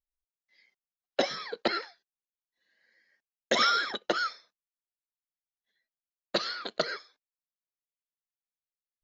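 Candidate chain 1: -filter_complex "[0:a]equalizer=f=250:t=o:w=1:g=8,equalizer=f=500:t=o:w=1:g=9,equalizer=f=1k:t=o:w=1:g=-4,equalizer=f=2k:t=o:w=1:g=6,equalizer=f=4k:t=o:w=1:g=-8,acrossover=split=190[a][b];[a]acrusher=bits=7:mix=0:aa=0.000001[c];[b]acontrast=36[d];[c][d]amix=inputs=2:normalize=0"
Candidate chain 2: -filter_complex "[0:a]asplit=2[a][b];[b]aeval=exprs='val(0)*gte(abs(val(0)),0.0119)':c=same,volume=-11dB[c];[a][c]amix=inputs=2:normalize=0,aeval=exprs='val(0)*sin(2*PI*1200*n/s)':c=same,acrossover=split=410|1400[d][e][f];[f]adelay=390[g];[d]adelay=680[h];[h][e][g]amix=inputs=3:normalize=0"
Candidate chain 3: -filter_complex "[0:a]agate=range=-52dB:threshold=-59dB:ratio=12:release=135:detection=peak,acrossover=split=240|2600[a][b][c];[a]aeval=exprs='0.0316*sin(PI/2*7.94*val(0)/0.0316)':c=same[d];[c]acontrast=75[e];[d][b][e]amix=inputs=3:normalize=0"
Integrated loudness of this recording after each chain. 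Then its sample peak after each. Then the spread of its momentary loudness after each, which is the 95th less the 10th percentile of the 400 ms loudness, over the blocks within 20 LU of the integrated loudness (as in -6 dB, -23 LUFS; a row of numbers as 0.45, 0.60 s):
-22.0, -33.5, -26.5 LUFS; -3.5, -15.0, -9.0 dBFS; 10, 16, 11 LU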